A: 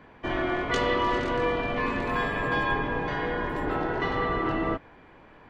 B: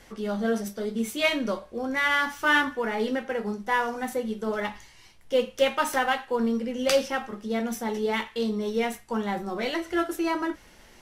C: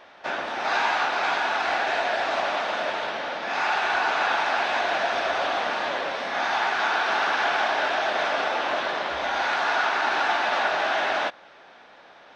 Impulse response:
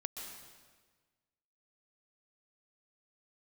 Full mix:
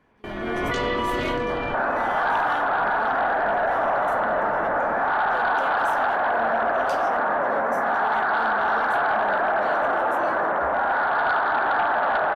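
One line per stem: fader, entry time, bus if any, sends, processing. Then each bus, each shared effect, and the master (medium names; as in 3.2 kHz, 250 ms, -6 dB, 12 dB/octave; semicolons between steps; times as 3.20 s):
-5.0 dB, 0.00 s, bus A, no send, peak limiter -25.5 dBFS, peak gain reduction 11 dB; level flattener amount 70%
-9.0 dB, 0.00 s, no bus, no send, none
+1.5 dB, 1.50 s, bus A, no send, steep low-pass 1.6 kHz 36 dB/octave; peaking EQ 350 Hz -4 dB 0.35 oct; sine folder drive 4 dB, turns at -12 dBFS
bus A: 0.0 dB, level rider gain up to 13 dB; peak limiter -12 dBFS, peak gain reduction 10.5 dB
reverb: none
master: gate with hold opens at -27 dBFS; peak limiter -16 dBFS, peak gain reduction 6.5 dB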